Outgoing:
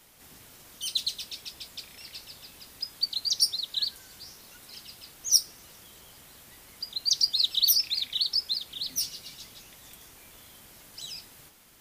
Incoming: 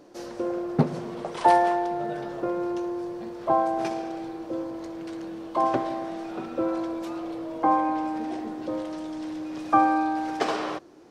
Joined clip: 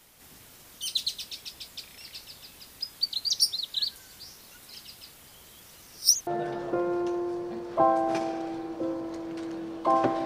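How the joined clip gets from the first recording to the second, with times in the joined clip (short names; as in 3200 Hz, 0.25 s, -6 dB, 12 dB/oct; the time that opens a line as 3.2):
outgoing
5.18–6.27 reverse
6.27 switch to incoming from 1.97 s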